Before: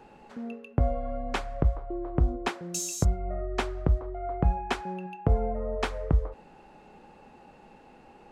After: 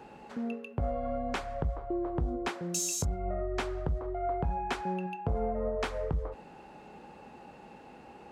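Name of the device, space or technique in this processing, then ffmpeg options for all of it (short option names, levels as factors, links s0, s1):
soft clipper into limiter: -af "asoftclip=type=tanh:threshold=0.119,alimiter=level_in=1.12:limit=0.0631:level=0:latency=1:release=152,volume=0.891,highpass=54,volume=1.33"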